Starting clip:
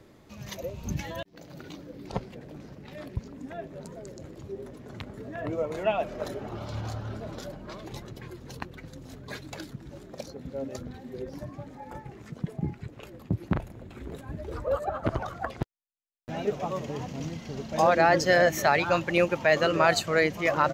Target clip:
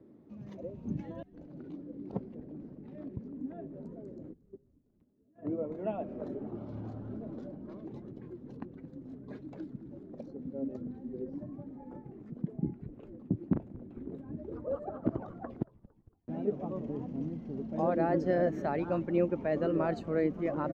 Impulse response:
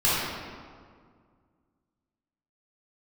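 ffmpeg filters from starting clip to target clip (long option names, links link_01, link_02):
-filter_complex "[0:a]asplit=3[link_01][link_02][link_03];[link_01]afade=type=out:start_time=4.32:duration=0.02[link_04];[link_02]agate=range=-29dB:threshold=-33dB:ratio=16:detection=peak,afade=type=in:start_time=4.32:duration=0.02,afade=type=out:start_time=5.79:duration=0.02[link_05];[link_03]afade=type=in:start_time=5.79:duration=0.02[link_06];[link_04][link_05][link_06]amix=inputs=3:normalize=0,bandpass=frequency=260:width_type=q:width=1.8:csg=0,asplit=5[link_07][link_08][link_09][link_10][link_11];[link_08]adelay=228,afreqshift=-110,volume=-21.5dB[link_12];[link_09]adelay=456,afreqshift=-220,volume=-26.5dB[link_13];[link_10]adelay=684,afreqshift=-330,volume=-31.6dB[link_14];[link_11]adelay=912,afreqshift=-440,volume=-36.6dB[link_15];[link_07][link_12][link_13][link_14][link_15]amix=inputs=5:normalize=0,volume=2.5dB"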